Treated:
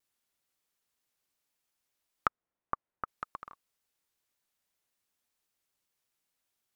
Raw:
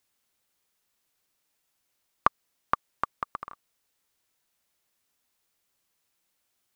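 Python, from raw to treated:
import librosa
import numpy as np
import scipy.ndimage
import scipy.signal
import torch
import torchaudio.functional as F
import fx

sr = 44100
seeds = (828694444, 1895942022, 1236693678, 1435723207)

y = fx.lowpass(x, sr, hz=1400.0, slope=12, at=(2.27, 3.08))
y = fx.vibrato_shape(y, sr, shape='saw_down', rate_hz=5.3, depth_cents=160.0)
y = y * librosa.db_to_amplitude(-6.5)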